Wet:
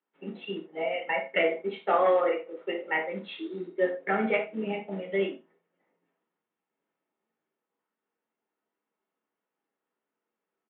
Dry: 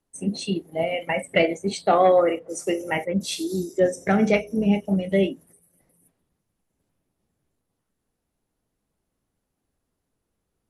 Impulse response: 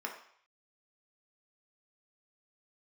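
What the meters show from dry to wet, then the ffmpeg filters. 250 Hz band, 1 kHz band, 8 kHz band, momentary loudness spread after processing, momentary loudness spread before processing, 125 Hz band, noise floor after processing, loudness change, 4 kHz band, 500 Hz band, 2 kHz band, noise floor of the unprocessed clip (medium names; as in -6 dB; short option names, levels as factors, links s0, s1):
-11.5 dB, -5.0 dB, under -40 dB, 13 LU, 10 LU, -15.5 dB, under -85 dBFS, -6.0 dB, -8.0 dB, -5.5 dB, -2.0 dB, -79 dBFS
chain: -filter_complex "[0:a]highpass=190,lowshelf=f=430:g=-7,aecho=1:1:92:0.0794,acrusher=bits=5:mode=log:mix=0:aa=0.000001[s0];[1:a]atrim=start_sample=2205,atrim=end_sample=3969[s1];[s0][s1]afir=irnorm=-1:irlink=0,aresample=8000,aresample=44100,volume=0.668"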